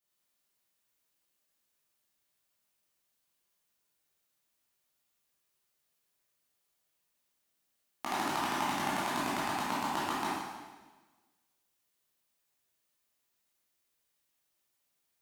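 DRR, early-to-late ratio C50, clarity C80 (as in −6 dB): −10.0 dB, −3.0 dB, 0.5 dB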